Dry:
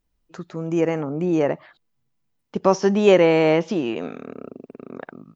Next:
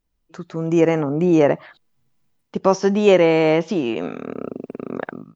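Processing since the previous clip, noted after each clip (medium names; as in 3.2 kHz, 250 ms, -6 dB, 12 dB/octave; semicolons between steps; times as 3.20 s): level rider gain up to 9.5 dB; trim -1 dB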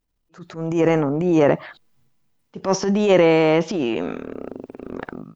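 transient shaper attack -11 dB, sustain +5 dB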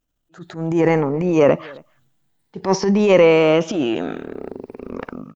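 drifting ripple filter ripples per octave 0.87, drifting +0.55 Hz, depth 7 dB; echo from a far wall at 46 m, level -25 dB; trim +1 dB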